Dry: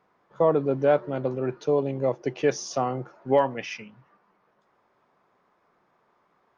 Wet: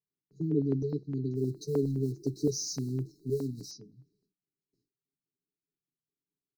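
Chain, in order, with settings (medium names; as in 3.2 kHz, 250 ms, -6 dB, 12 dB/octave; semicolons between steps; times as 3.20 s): 1.35–3.71 s: companding laws mixed up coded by mu; gate with hold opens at -54 dBFS; brick-wall FIR band-stop 430–3800 Hz; comb 6.9 ms, depth 71%; step-sequenced notch 9.7 Hz 280–2700 Hz; trim -3 dB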